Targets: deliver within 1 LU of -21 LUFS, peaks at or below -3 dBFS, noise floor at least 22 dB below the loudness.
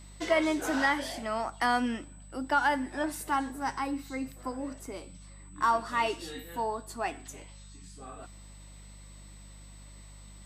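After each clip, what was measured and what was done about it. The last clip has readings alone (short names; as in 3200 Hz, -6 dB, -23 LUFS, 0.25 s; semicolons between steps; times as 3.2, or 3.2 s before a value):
hum 50 Hz; harmonics up to 200 Hz; hum level -47 dBFS; steady tone 8000 Hz; tone level -56 dBFS; loudness -31.0 LUFS; peak -15.0 dBFS; loudness target -21.0 LUFS
-> de-hum 50 Hz, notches 4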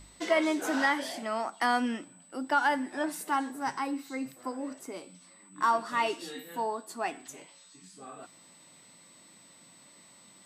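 hum none; steady tone 8000 Hz; tone level -56 dBFS
-> notch 8000 Hz, Q 30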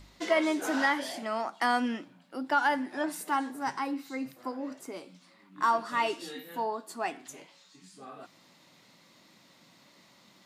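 steady tone none; loudness -31.0 LUFS; peak -15.0 dBFS; loudness target -21.0 LUFS
-> gain +10 dB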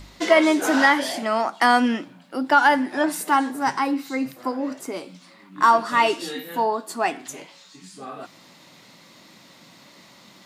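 loudness -21.0 LUFS; peak -5.0 dBFS; noise floor -51 dBFS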